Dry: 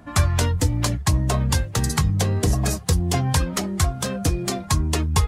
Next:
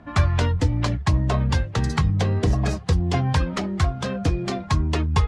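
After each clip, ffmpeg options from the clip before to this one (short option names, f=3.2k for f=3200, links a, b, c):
-af "lowpass=3.7k"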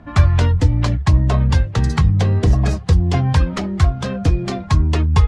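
-af "lowshelf=f=120:g=7.5,volume=2dB"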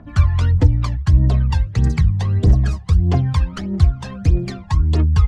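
-af "aphaser=in_gain=1:out_gain=1:delay=1.2:decay=0.68:speed=1.6:type=triangular,volume=-8dB"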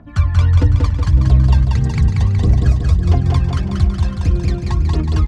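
-af "aecho=1:1:185|370|555|740|925|1110|1295|1480:0.708|0.404|0.23|0.131|0.0747|0.0426|0.0243|0.0138,volume=-1dB"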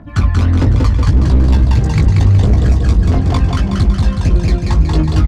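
-filter_complex "[0:a]asoftclip=type=hard:threshold=-12.5dB,asplit=2[a][b];[b]adelay=19,volume=-6dB[c];[a][c]amix=inputs=2:normalize=0,volume=5dB"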